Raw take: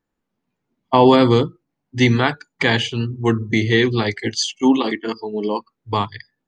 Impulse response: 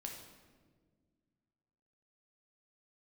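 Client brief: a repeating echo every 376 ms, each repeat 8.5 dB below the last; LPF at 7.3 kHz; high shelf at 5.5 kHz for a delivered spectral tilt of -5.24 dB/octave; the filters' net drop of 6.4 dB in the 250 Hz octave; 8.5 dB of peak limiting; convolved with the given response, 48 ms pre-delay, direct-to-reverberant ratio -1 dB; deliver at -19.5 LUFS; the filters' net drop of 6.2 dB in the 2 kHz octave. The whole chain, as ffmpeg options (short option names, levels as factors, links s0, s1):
-filter_complex "[0:a]lowpass=7300,equalizer=f=250:t=o:g=-7.5,equalizer=f=2000:t=o:g=-8,highshelf=f=5500:g=6.5,alimiter=limit=0.251:level=0:latency=1,aecho=1:1:376|752|1128|1504:0.376|0.143|0.0543|0.0206,asplit=2[s0][s1];[1:a]atrim=start_sample=2205,adelay=48[s2];[s1][s2]afir=irnorm=-1:irlink=0,volume=1.5[s3];[s0][s3]amix=inputs=2:normalize=0,volume=1.06"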